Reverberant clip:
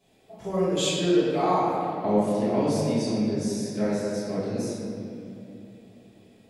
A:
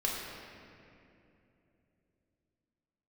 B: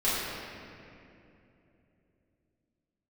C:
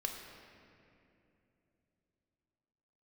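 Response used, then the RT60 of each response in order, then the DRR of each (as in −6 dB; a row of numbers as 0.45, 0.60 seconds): B; 2.9, 2.9, 2.9 seconds; −4.0, −12.0, 1.5 decibels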